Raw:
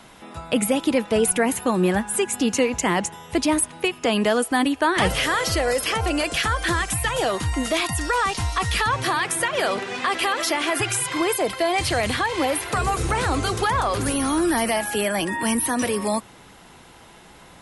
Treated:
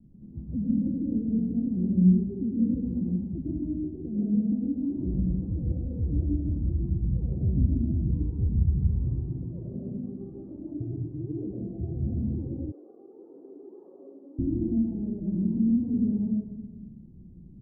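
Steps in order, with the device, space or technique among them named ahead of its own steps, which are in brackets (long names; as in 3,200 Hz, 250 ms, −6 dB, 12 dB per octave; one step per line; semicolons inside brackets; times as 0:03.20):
club heard from the street (brickwall limiter −17 dBFS, peak gain reduction 9.5 dB; low-pass filter 230 Hz 24 dB per octave; convolution reverb RT60 1.3 s, pre-delay 98 ms, DRR −3.5 dB)
0:12.72–0:14.39: Butterworth high-pass 380 Hz 36 dB per octave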